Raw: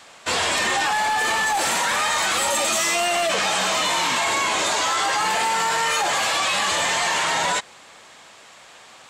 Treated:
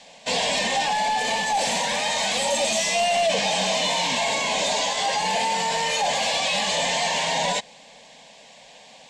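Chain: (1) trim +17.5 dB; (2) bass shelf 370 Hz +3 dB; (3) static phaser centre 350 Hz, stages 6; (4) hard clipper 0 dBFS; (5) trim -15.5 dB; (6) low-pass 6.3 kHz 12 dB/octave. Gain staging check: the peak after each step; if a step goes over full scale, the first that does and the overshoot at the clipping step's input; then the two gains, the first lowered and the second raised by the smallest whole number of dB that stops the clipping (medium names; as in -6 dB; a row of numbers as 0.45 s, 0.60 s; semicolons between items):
+7.5 dBFS, +8.0 dBFS, +6.5 dBFS, 0.0 dBFS, -15.5 dBFS, -15.0 dBFS; step 1, 6.5 dB; step 1 +10.5 dB, step 5 -8.5 dB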